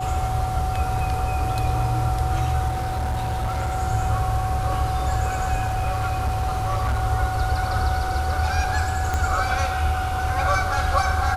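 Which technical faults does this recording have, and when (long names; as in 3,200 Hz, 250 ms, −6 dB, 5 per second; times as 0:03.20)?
whistle 750 Hz −26 dBFS
0:02.68–0:03.76: clipping −21 dBFS
0:05.67–0:07.03: clipping −18.5 dBFS
0:09.14: click −11 dBFS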